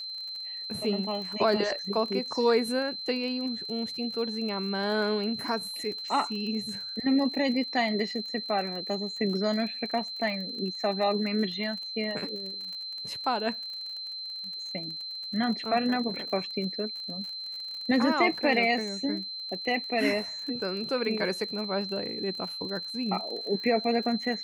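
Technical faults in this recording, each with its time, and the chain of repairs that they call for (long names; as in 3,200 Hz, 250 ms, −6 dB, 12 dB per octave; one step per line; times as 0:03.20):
surface crackle 37 per second −36 dBFS
whistle 4,100 Hz −35 dBFS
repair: click removal
notch filter 4,100 Hz, Q 30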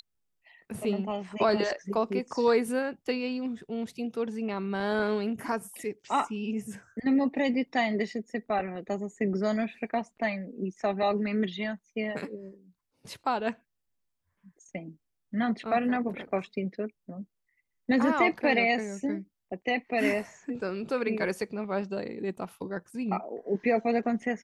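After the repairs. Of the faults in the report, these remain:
none of them is left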